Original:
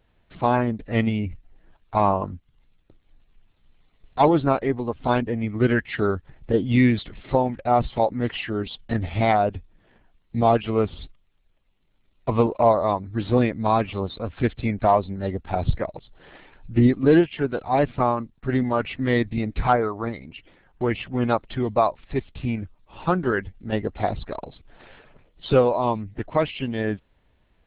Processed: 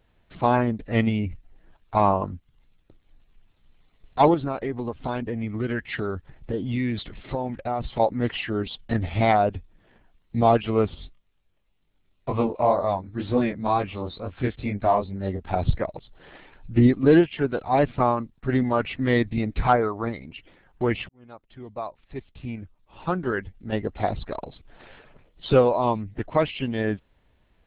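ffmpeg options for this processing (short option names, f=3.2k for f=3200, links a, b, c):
-filter_complex "[0:a]asettb=1/sr,asplit=3[a][b][c];[a]atrim=end=4.344[d];[b]atrim=start=4.34:end=8,asetpts=PTS-STARTPTS,afade=t=in:d=0.004:c=qsin,afade=t=out:st=3.656:d=0.004:c=qsin,acompressor=threshold=-25dB:ratio=3:attack=3.2:release=140:knee=1:detection=peak[e];[c]atrim=start=7.996[f];[d][e]acrossfade=d=0.004:c1=hsin:c2=qsin[g];[g][f]acrossfade=d=0.004:c1=qsin:c2=hsin,asettb=1/sr,asplit=3[h][i][j];[h]atrim=end=10.954[k];[i]atrim=start=10.95:end=15.44,asetpts=PTS-STARTPTS,afade=t=in:d=0.004:c=qsin,afade=t=out:st=4.486:d=0.004:c=qsin,flanger=delay=20:depth=4.1:speed=2.1[l];[j]atrim=start=15.436[m];[k][l]acrossfade=d=0.004:c1=hsin:c2=qsin[n];[n][m]acrossfade=d=0.004:c1=qsin:c2=hsin,asplit=2[o][p];[o]atrim=end=21.09,asetpts=PTS-STARTPTS,afade=t=out:st=21.086:d=0.004:c=hsin[q];[p]atrim=start=21.09,asetpts=PTS-STARTPTS,afade=t=in:d=3.28[r];[q][r]concat=n=2:v=0:a=1"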